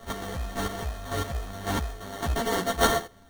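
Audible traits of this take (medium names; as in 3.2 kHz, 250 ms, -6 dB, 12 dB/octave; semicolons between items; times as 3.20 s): a buzz of ramps at a fixed pitch in blocks of 64 samples; chopped level 1.8 Hz, depth 65%, duty 20%; aliases and images of a low sample rate 2.5 kHz, jitter 0%; a shimmering, thickened sound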